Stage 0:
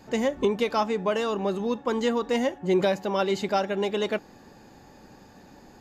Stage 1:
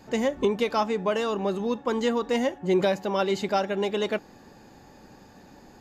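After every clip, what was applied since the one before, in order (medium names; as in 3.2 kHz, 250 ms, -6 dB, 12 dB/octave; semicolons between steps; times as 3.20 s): no audible change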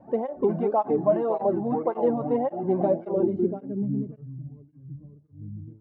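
ever faster or slower copies 310 ms, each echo -5 st, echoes 2, each echo -6 dB; low-pass sweep 720 Hz -> 100 Hz, 2.78–4.50 s; cancelling through-zero flanger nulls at 1.8 Hz, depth 2.6 ms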